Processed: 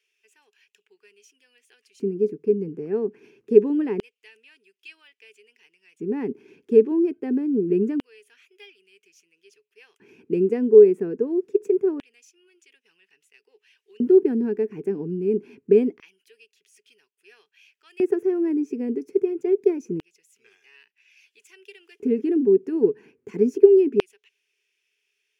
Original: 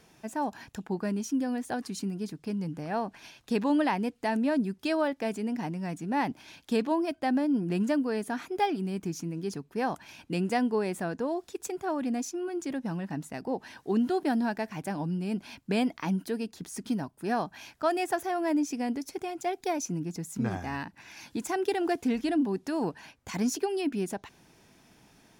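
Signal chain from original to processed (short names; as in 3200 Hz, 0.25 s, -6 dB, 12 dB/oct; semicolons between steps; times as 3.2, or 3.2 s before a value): EQ curve 120 Hz 0 dB, 290 Hz -9 dB, 420 Hz +15 dB, 600 Hz -21 dB, 2600 Hz -11 dB, 3800 Hz -27 dB, 5600 Hz -21 dB, 12000 Hz -23 dB; LFO high-pass square 0.25 Hz 240–3100 Hz; gain +4 dB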